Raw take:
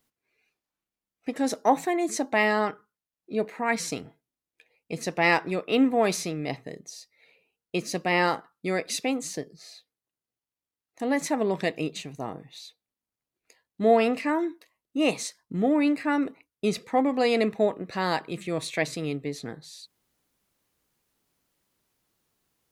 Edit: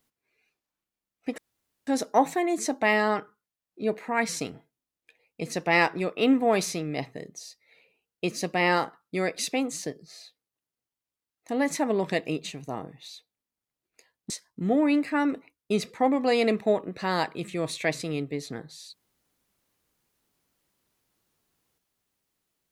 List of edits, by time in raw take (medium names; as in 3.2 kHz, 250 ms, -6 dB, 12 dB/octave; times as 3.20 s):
1.38 s: insert room tone 0.49 s
13.81–15.23 s: delete